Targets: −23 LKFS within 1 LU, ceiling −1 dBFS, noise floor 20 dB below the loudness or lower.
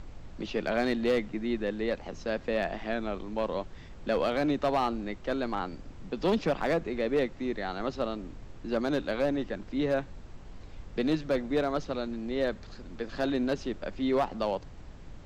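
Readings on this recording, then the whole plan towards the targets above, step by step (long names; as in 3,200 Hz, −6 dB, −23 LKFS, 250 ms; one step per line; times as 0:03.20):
share of clipped samples 0.7%; peaks flattened at −20.0 dBFS; background noise floor −47 dBFS; target noise floor −51 dBFS; integrated loudness −31.0 LKFS; sample peak −20.0 dBFS; target loudness −23.0 LKFS
→ clipped peaks rebuilt −20 dBFS
noise reduction from a noise print 6 dB
level +8 dB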